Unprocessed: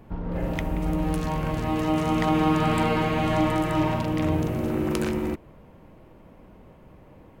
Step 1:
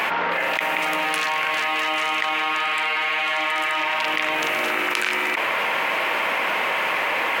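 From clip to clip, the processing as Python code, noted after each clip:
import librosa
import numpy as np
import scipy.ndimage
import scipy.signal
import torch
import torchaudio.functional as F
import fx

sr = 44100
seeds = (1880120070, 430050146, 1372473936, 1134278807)

y = scipy.signal.sosfilt(scipy.signal.butter(2, 890.0, 'highpass', fs=sr, output='sos'), x)
y = fx.peak_eq(y, sr, hz=2300.0, db=13.5, octaves=1.7)
y = fx.env_flatten(y, sr, amount_pct=100)
y = y * librosa.db_to_amplitude(-4.5)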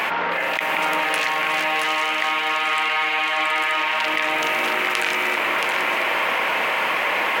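y = x + 10.0 ** (-4.5 / 20.0) * np.pad(x, (int(675 * sr / 1000.0), 0))[:len(x)]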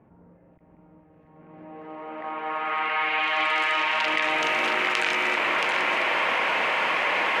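y = fx.filter_sweep_lowpass(x, sr, from_hz=110.0, to_hz=6800.0, start_s=1.13, end_s=3.64, q=0.72)
y = y * librosa.db_to_amplitude(-2.5)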